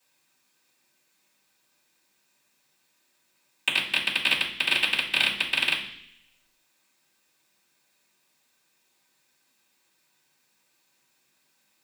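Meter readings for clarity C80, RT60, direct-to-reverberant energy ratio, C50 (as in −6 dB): 11.5 dB, 0.65 s, −13.5 dB, 7.5 dB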